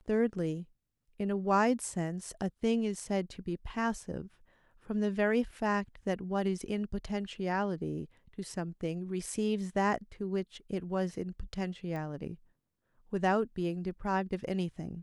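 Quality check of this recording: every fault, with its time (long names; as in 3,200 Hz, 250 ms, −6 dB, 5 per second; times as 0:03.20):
0:11.96: click −28 dBFS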